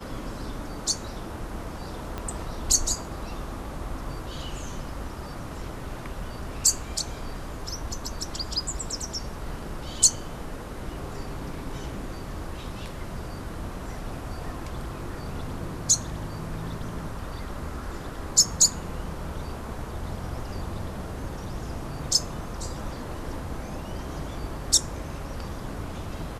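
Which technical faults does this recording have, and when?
2.18 s: pop -18 dBFS

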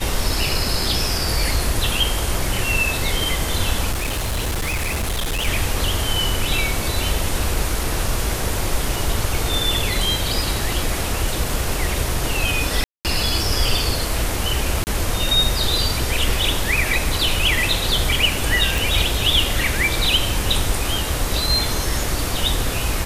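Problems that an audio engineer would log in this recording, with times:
3.91–5.48 s: clipped -19 dBFS
12.84–13.05 s: dropout 208 ms
14.84–14.87 s: dropout 29 ms
18.78 s: pop

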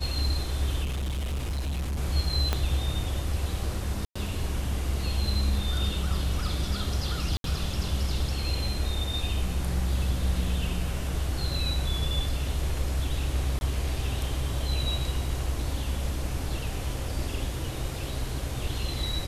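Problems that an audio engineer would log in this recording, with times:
0.83–1.99 s: clipped -27 dBFS
2.53 s: pop -11 dBFS
4.05–4.16 s: dropout 105 ms
7.37–7.44 s: dropout 72 ms
13.59–13.61 s: dropout 21 ms

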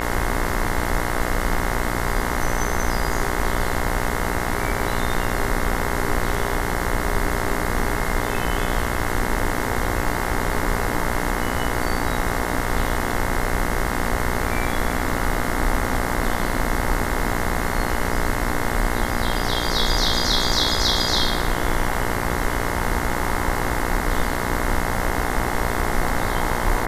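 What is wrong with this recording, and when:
buzz 60 Hz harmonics 36 -26 dBFS

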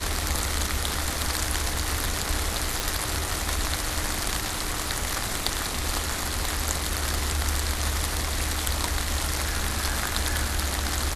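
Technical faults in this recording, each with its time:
2.80 s: pop

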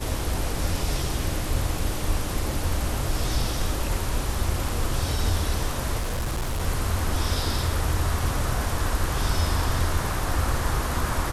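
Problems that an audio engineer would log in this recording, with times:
5.99–6.62 s: clipped -23 dBFS

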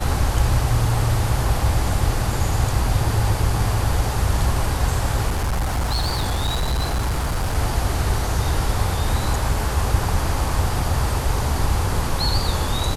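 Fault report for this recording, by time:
5.29–7.57 s: clipped -18 dBFS

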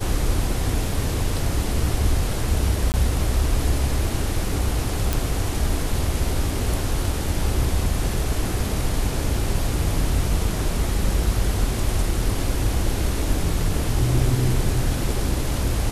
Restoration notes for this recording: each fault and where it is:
2.92–2.94 s: dropout 19 ms
5.13 s: pop

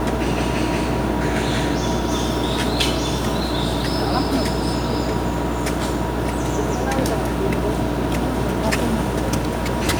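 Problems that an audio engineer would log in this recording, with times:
buzz 60 Hz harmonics 17 -26 dBFS

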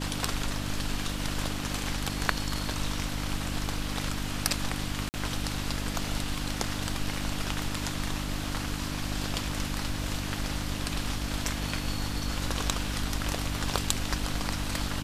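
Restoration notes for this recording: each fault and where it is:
hum 50 Hz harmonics 6 -35 dBFS
5.09–5.14 s: dropout 49 ms

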